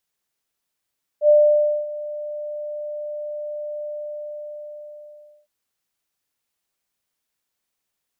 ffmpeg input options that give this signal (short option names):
-f lavfi -i "aevalsrc='0.355*sin(2*PI*596*t)':d=4.26:s=44100,afade=t=in:d=0.078,afade=t=out:st=0.078:d=0.572:silence=0.126,afade=t=out:st=2.62:d=1.64"